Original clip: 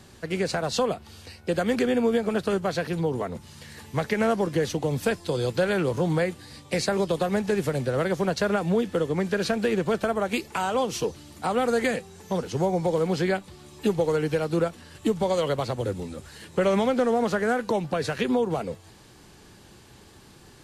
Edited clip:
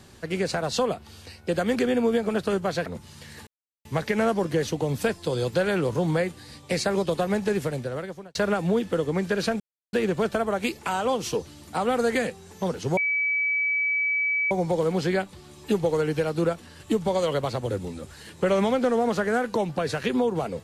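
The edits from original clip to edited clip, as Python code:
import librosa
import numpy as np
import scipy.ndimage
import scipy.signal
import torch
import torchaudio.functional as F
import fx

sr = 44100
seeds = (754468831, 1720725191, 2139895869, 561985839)

y = fx.edit(x, sr, fx.cut(start_s=2.86, length_s=0.4),
    fx.insert_silence(at_s=3.87, length_s=0.38),
    fx.fade_out_span(start_s=7.54, length_s=0.83),
    fx.insert_silence(at_s=9.62, length_s=0.33),
    fx.insert_tone(at_s=12.66, length_s=1.54, hz=2290.0, db=-21.5), tone=tone)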